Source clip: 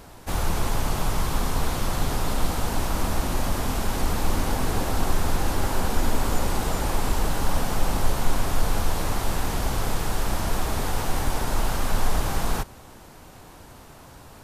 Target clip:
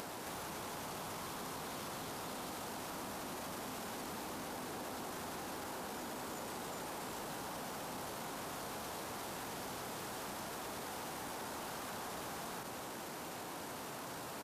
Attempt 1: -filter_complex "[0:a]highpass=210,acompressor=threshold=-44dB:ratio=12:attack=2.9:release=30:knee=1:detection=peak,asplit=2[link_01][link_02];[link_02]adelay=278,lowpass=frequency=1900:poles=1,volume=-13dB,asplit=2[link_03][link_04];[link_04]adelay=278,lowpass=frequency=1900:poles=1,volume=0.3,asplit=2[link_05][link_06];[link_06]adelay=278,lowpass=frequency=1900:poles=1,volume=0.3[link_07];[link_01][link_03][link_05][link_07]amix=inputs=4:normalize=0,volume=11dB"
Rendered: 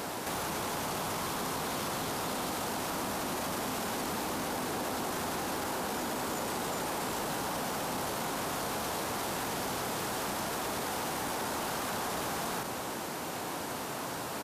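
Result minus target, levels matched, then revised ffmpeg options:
downward compressor: peak gain reduction −9.5 dB
-filter_complex "[0:a]highpass=210,acompressor=threshold=-54.5dB:ratio=12:attack=2.9:release=30:knee=1:detection=peak,asplit=2[link_01][link_02];[link_02]adelay=278,lowpass=frequency=1900:poles=1,volume=-13dB,asplit=2[link_03][link_04];[link_04]adelay=278,lowpass=frequency=1900:poles=1,volume=0.3,asplit=2[link_05][link_06];[link_06]adelay=278,lowpass=frequency=1900:poles=1,volume=0.3[link_07];[link_01][link_03][link_05][link_07]amix=inputs=4:normalize=0,volume=11dB"

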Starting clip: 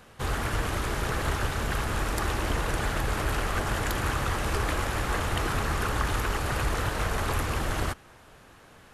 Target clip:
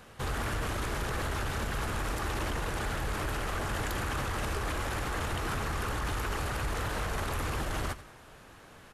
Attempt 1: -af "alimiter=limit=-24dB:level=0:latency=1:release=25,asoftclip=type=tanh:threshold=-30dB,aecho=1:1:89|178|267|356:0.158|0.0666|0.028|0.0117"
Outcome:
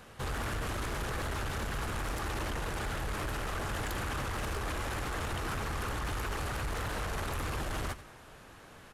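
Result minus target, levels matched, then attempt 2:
soft clipping: distortion +13 dB
-af "alimiter=limit=-24dB:level=0:latency=1:release=25,asoftclip=type=tanh:threshold=-21.5dB,aecho=1:1:89|178|267|356:0.158|0.0666|0.028|0.0117"

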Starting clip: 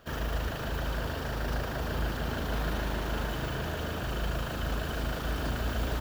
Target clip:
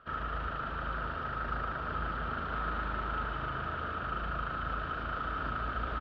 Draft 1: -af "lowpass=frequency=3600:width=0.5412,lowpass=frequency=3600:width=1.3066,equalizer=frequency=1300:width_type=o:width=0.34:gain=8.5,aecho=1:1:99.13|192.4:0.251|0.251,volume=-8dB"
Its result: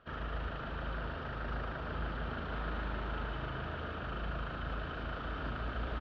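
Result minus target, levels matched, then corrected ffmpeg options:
1,000 Hz band −3.5 dB
-af "lowpass=frequency=3600:width=0.5412,lowpass=frequency=3600:width=1.3066,equalizer=frequency=1300:width_type=o:width=0.34:gain=20,aecho=1:1:99.13|192.4:0.251|0.251,volume=-8dB"

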